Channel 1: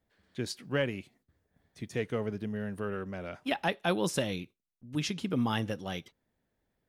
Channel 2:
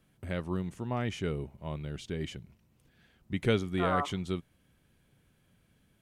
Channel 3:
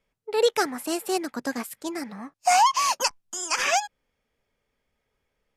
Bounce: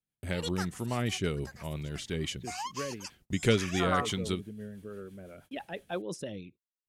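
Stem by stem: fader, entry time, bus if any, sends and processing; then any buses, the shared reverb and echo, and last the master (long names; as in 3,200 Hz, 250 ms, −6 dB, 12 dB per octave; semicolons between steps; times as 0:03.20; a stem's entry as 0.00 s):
−5.5 dB, 2.05 s, no send, spectral envelope exaggerated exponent 1.5
+2.5 dB, 0.00 s, no send, high-shelf EQ 2,800 Hz +11 dB
−3.5 dB, 0.00 s, no send, high-pass filter 970 Hz; automatic ducking −9 dB, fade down 0.85 s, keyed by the second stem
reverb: not used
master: noise gate −53 dBFS, range −29 dB; rotating-speaker cabinet horn 6 Hz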